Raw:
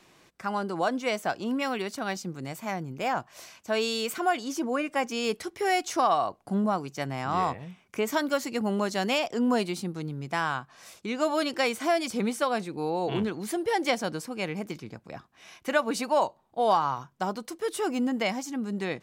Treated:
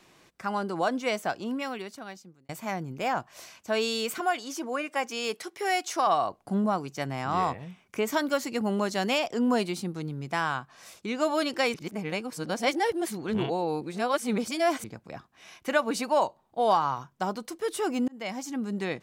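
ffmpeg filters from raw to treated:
ffmpeg -i in.wav -filter_complex "[0:a]asettb=1/sr,asplit=3[link_01][link_02][link_03];[link_01]atrim=end=4.204[link_04];[link_02]atrim=start=4.2:end=6.07,asetpts=PTS-STARTPTS,afade=type=in:duration=0.004:curve=qsin,afade=type=out:start_time=1.866:duration=0.004:curve=qsin,highpass=frequency=480:poles=1[link_05];[link_03]atrim=start=6.066[link_06];[link_04][link_05]acrossfade=duration=0.004:curve1=hsin:curve2=qsin[link_07];[link_07][link_06]acrossfade=duration=0.004:curve1=qsin:curve2=hsin,asplit=5[link_08][link_09][link_10][link_11][link_12];[link_08]atrim=end=2.49,asetpts=PTS-STARTPTS,afade=type=out:start_time=1.16:duration=1.33[link_13];[link_09]atrim=start=2.49:end=11.742,asetpts=PTS-STARTPTS,afade=type=in:duration=0.004:curve=hsin[link_14];[link_10]atrim=start=11.738:end=14.842,asetpts=PTS-STARTPTS,areverse[link_15];[link_11]atrim=start=14.838:end=18.08,asetpts=PTS-STARTPTS,afade=type=out:start_time=3.238:duration=0.004:curve=hsin[link_16];[link_12]atrim=start=18.08,asetpts=PTS-STARTPTS,afade=type=in:duration=0.4[link_17];[link_13][link_14]concat=n=2:v=0:a=1[link_18];[link_18][link_15]acrossfade=duration=0.004:curve1=hsin:curve2=hsin[link_19];[link_16][link_17]concat=n=2:v=0:a=1[link_20];[link_19][link_20]acrossfade=duration=0.004:curve1=hsin:curve2=hsin" out.wav

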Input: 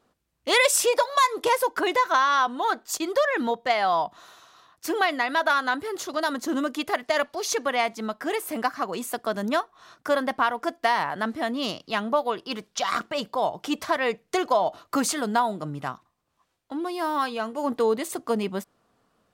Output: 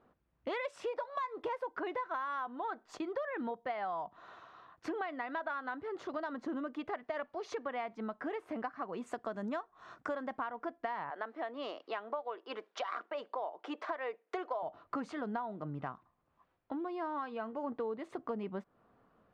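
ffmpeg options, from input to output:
ffmpeg -i in.wav -filter_complex "[0:a]asettb=1/sr,asplit=3[link_01][link_02][link_03];[link_01]atrim=end=9.064[link_04];[link_02]atrim=start=9.06:end=10.44,asetpts=PTS-STARTPTS,afade=type=in:duration=0.004:curve=qsin,afade=type=out:start_time=1.376:duration=0.004:curve=qsin,equalizer=frequency=7600:width_type=o:width=0.77:gain=14.5[link_05];[link_03]atrim=start=10.436[link_06];[link_04][link_05]acrossfade=duration=0.004:curve1=hsin:curve2=qsin[link_07];[link_07][link_06]acrossfade=duration=0.004:curve1=qsin:curve2=hsin,asettb=1/sr,asplit=3[link_08][link_09][link_10];[link_08]atrim=end=11.104[link_11];[link_09]atrim=start=11.1:end=14.63,asetpts=PTS-STARTPTS,afade=type=in:duration=0.004:curve=qsin,afade=type=out:start_time=3.526:duration=0.004:curve=qsin,highpass=frequency=360:width=0.5412,highpass=frequency=360:width=1.3066[link_12];[link_10]atrim=start=14.626[link_13];[link_11][link_12]acrossfade=duration=0.004:curve1=hsin:curve2=qsin[link_14];[link_14][link_13]acrossfade=duration=0.004:curve1=qsin:curve2=hsin,lowpass=1800,acompressor=threshold=-38dB:ratio=4" out.wav

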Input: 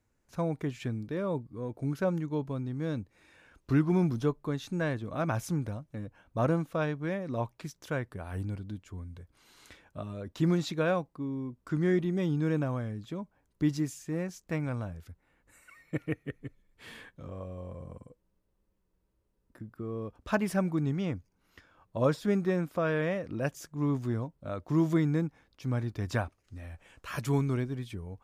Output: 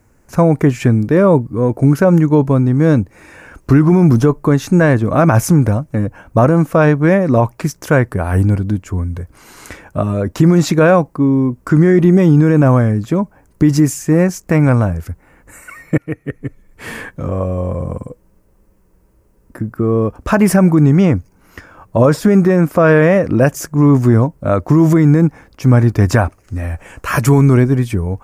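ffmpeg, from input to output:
ffmpeg -i in.wav -filter_complex "[0:a]asplit=2[link_01][link_02];[link_01]atrim=end=15.98,asetpts=PTS-STARTPTS,afade=type=out:start_time=15.976:duration=0.004:curve=hsin:silence=0.125893[link_03];[link_02]atrim=start=15.98,asetpts=PTS-STARTPTS,afade=type=in:duration=0.91:silence=0.125893[link_04];[link_03][link_04]concat=n=2:v=0:a=1,equalizer=frequency=3600:width=1.7:gain=-12,alimiter=level_in=23.5dB:limit=-1dB:release=50:level=0:latency=1,volume=-1dB" out.wav

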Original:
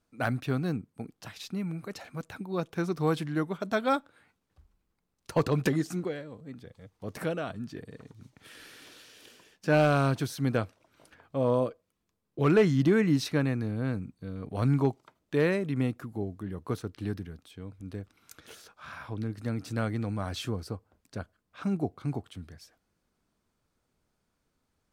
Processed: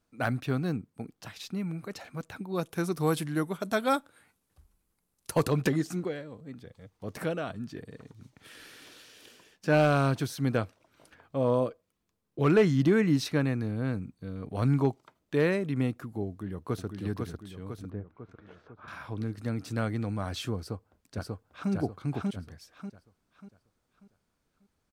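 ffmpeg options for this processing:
ffmpeg -i in.wav -filter_complex "[0:a]asettb=1/sr,asplit=3[link_01][link_02][link_03];[link_01]atrim=end=2.554[link_04];[link_02]atrim=start=2.55:end=5.52,asetpts=PTS-STARTPTS,afade=type=in:duration=0.004:curve=qsin,afade=type=out:start_time=2.966:duration=0.004:curve=qsin,equalizer=frequency=11000:width_type=o:width=1:gain=14[link_05];[link_03]atrim=start=5.516[link_06];[link_04][link_05]acrossfade=duration=0.004:curve1=hsin:curve2=qsin[link_07];[link_07][link_06]acrossfade=duration=0.004:curve1=qsin:curve2=hsin,asplit=2[link_08][link_09];[link_09]afade=type=in:start_time=16.28:duration=0.01,afade=type=out:start_time=16.85:duration=0.01,aecho=0:1:500|1000|1500|2000|2500|3000|3500:0.630957|0.347027|0.190865|0.104976|0.0577365|0.0317551|0.0174653[link_10];[link_08][link_10]amix=inputs=2:normalize=0,asettb=1/sr,asplit=3[link_11][link_12][link_13];[link_11]atrim=end=17.904[link_14];[link_12]atrim=start=17.9:end=18.88,asetpts=PTS-STARTPTS,afade=type=in:duration=0.004:curve=qsin,afade=type=out:start_time=0.976:duration=0.004:curve=qsin,lowpass=1400[link_15];[link_13]atrim=start=18.876[link_16];[link_14][link_15]acrossfade=duration=0.004:curve1=hsin:curve2=qsin[link_17];[link_17][link_16]acrossfade=duration=0.004:curve1=qsin:curve2=hsin,asplit=2[link_18][link_19];[link_19]afade=type=in:start_time=20.58:duration=0.01,afade=type=out:start_time=21.71:duration=0.01,aecho=0:1:590|1180|1770|2360|2950:0.891251|0.311938|0.109178|0.0382124|0.0133743[link_20];[link_18][link_20]amix=inputs=2:normalize=0" out.wav

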